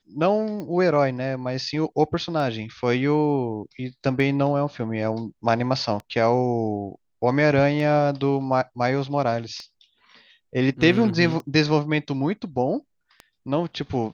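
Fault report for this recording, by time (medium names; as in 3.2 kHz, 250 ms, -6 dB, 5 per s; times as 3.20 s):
tick 33 1/3 rpm -21 dBFS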